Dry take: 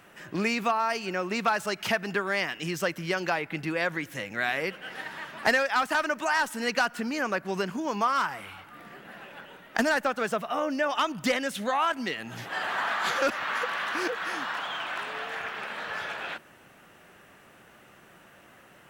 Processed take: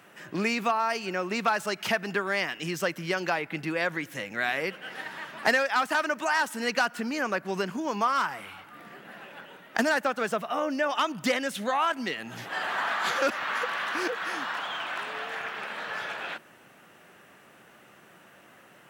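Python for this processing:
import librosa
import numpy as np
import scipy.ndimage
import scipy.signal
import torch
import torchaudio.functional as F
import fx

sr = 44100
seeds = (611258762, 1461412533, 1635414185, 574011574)

y = scipy.signal.sosfilt(scipy.signal.butter(2, 120.0, 'highpass', fs=sr, output='sos'), x)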